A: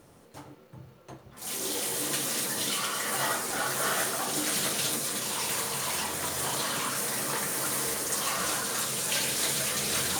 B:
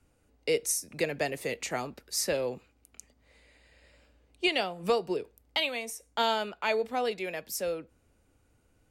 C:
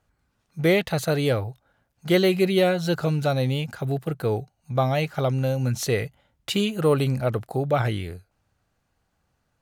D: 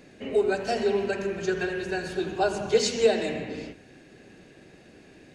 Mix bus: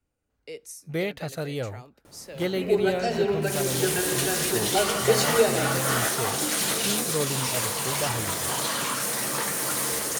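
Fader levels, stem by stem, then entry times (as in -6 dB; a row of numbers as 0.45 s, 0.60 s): +3.0 dB, -12.0 dB, -8.5 dB, 0.0 dB; 2.05 s, 0.00 s, 0.30 s, 2.35 s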